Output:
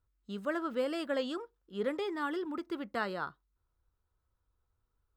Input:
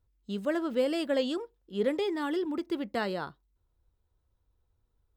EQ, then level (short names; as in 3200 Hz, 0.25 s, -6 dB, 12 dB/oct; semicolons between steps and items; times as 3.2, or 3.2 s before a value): bell 1300 Hz +10 dB 0.81 oct; -6.0 dB